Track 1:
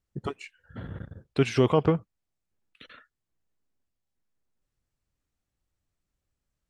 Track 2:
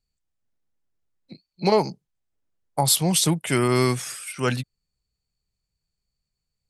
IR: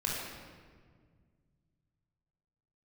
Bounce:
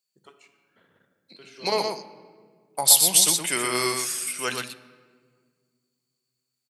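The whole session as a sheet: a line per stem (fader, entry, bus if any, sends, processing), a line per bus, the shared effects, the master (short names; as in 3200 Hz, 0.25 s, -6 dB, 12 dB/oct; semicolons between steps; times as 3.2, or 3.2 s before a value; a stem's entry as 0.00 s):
-18.5 dB, 0.00 s, send -10 dB, no echo send, auto duck -9 dB, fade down 0.25 s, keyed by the second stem
-5.0 dB, 0.00 s, send -15.5 dB, echo send -4 dB, dry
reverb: on, RT60 1.8 s, pre-delay 20 ms
echo: echo 0.121 s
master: HPF 220 Hz 12 dB/oct; tilt +3 dB/oct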